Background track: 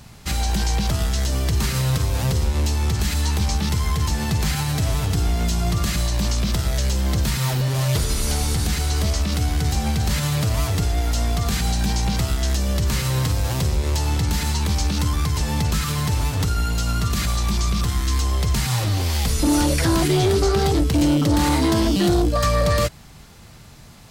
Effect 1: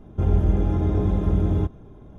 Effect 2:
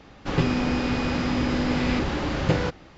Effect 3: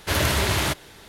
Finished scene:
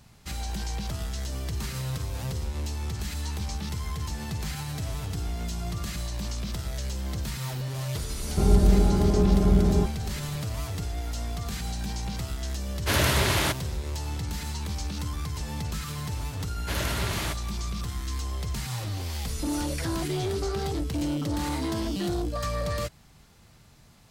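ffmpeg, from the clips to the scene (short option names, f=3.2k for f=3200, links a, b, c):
-filter_complex "[3:a]asplit=2[a][b];[0:a]volume=-11dB[c];[1:a]aecho=1:1:5:0.67,atrim=end=2.18,asetpts=PTS-STARTPTS,afade=t=in:d=0.004:c=hsin,afade=t=out:st=2.176:d=0.004:c=hsin,adelay=8190[d];[a]atrim=end=1.08,asetpts=PTS-STARTPTS,volume=-1.5dB,afade=t=in:d=0.1,afade=t=out:st=0.98:d=0.1,adelay=12790[e];[b]atrim=end=1.08,asetpts=PTS-STARTPTS,volume=-8.5dB,afade=t=in:d=0.004:c=hsin,afade=t=out:st=1.076:d=0.004:c=hsin,adelay=16600[f];[c][d][e][f]amix=inputs=4:normalize=0"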